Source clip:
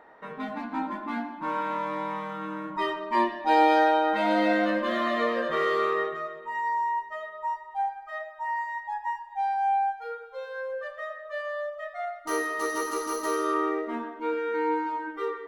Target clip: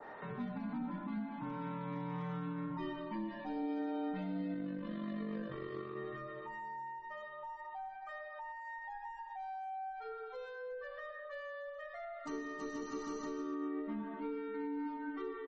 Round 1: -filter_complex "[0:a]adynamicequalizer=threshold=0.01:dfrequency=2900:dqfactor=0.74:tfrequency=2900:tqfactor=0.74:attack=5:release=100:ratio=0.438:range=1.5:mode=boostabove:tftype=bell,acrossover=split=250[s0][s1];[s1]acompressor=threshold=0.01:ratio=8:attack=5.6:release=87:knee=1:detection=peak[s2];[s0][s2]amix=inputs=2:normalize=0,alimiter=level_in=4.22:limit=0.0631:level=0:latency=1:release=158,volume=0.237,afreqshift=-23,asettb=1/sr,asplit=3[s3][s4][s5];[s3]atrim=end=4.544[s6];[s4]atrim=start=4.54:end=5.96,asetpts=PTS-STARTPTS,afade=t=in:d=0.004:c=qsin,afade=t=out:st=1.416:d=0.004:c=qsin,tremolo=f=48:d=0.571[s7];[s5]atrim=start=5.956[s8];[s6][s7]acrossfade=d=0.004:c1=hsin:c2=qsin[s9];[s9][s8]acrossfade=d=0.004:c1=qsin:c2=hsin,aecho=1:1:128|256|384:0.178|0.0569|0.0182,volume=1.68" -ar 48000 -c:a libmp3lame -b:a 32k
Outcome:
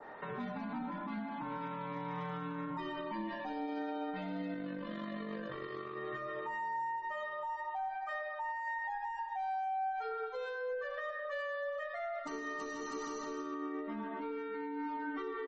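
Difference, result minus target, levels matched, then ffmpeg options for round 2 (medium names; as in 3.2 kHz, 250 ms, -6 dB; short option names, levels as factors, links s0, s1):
compression: peak gain reduction -9 dB
-filter_complex "[0:a]adynamicequalizer=threshold=0.01:dfrequency=2900:dqfactor=0.74:tfrequency=2900:tqfactor=0.74:attack=5:release=100:ratio=0.438:range=1.5:mode=boostabove:tftype=bell,acrossover=split=250[s0][s1];[s1]acompressor=threshold=0.00316:ratio=8:attack=5.6:release=87:knee=1:detection=peak[s2];[s0][s2]amix=inputs=2:normalize=0,alimiter=level_in=4.22:limit=0.0631:level=0:latency=1:release=158,volume=0.237,afreqshift=-23,asettb=1/sr,asplit=3[s3][s4][s5];[s3]atrim=end=4.544[s6];[s4]atrim=start=4.54:end=5.96,asetpts=PTS-STARTPTS,afade=t=in:d=0.004:c=qsin,afade=t=out:st=1.416:d=0.004:c=qsin,tremolo=f=48:d=0.571[s7];[s5]atrim=start=5.956[s8];[s6][s7]acrossfade=d=0.004:c1=hsin:c2=qsin[s9];[s9][s8]acrossfade=d=0.004:c1=qsin:c2=hsin,aecho=1:1:128|256|384:0.178|0.0569|0.0182,volume=1.68" -ar 48000 -c:a libmp3lame -b:a 32k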